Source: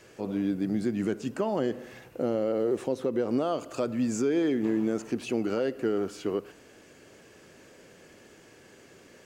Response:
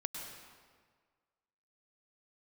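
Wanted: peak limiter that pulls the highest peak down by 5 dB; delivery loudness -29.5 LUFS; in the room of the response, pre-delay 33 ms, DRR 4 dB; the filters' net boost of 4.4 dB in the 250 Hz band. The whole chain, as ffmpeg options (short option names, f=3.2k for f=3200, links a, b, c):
-filter_complex "[0:a]equalizer=f=250:t=o:g=5.5,alimiter=limit=-18.5dB:level=0:latency=1,asplit=2[a][b];[1:a]atrim=start_sample=2205,adelay=33[c];[b][c]afir=irnorm=-1:irlink=0,volume=-4.5dB[d];[a][d]amix=inputs=2:normalize=0,volume=-2.5dB"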